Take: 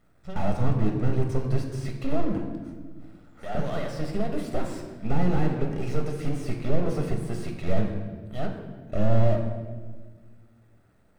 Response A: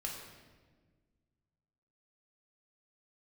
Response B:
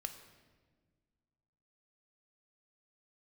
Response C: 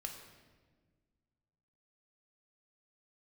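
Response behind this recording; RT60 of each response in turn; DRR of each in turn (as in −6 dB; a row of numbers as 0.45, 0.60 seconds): C; 1.5, 1.5, 1.5 seconds; −1.5, 7.0, 2.5 decibels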